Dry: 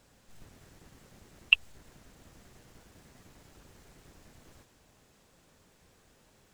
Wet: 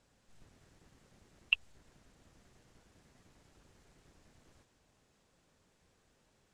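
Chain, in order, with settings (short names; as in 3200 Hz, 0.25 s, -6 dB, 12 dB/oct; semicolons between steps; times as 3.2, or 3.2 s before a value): LPF 9700 Hz 12 dB/oct; gain -8 dB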